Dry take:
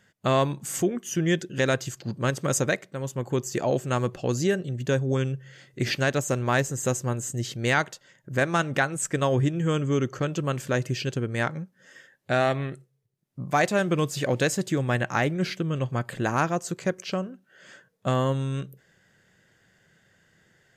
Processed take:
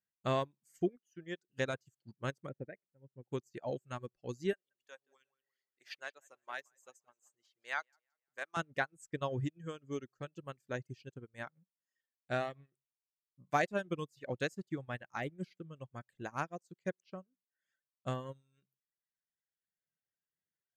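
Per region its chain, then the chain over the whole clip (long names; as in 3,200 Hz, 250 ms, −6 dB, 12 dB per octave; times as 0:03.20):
0:00.96–0:01.49: high-pass filter 300 Hz 6 dB per octave + high-shelf EQ 2,200 Hz −4.5 dB
0:02.49–0:03.32: low-pass filter 2,000 Hz 24 dB per octave + parametric band 1,100 Hz −14 dB 0.94 octaves
0:04.53–0:08.57: high-pass filter 770 Hz + tape delay 175 ms, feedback 46%, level −8 dB, low-pass 4,200 Hz
whole clip: dynamic equaliser 8,500 Hz, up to −3 dB, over −42 dBFS, Q 0.84; reverb reduction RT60 1.6 s; expander for the loud parts 2.5 to 1, over −39 dBFS; level −6.5 dB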